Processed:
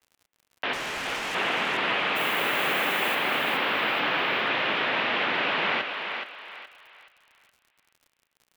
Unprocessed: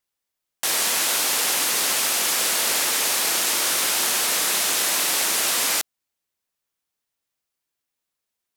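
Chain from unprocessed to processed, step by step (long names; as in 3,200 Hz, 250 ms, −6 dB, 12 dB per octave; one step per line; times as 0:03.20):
single-sideband voice off tune −74 Hz 210–3,100 Hz
0:00.73–0:01.35: hard clipping −32 dBFS, distortion −14 dB
0:02.15–0:03.14: background noise violet −41 dBFS
on a send: feedback echo with a high-pass in the loop 422 ms, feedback 34%, high-pass 430 Hz, level −5.5 dB
on the sum: surface crackle 72 per second −47 dBFS
level +1.5 dB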